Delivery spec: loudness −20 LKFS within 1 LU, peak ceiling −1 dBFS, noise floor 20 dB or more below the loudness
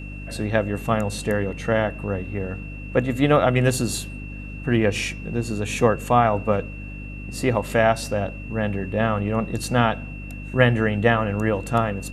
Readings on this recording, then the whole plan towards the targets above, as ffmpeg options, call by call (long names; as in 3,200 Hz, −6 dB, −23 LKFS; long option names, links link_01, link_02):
mains hum 50 Hz; hum harmonics up to 300 Hz; level of the hum −33 dBFS; interfering tone 2,700 Hz; level of the tone −40 dBFS; integrated loudness −22.5 LKFS; sample peak −1.5 dBFS; target loudness −20.0 LKFS
→ -af "bandreject=frequency=50:width_type=h:width=4,bandreject=frequency=100:width_type=h:width=4,bandreject=frequency=150:width_type=h:width=4,bandreject=frequency=200:width_type=h:width=4,bandreject=frequency=250:width_type=h:width=4,bandreject=frequency=300:width_type=h:width=4"
-af "bandreject=frequency=2700:width=30"
-af "volume=2.5dB,alimiter=limit=-1dB:level=0:latency=1"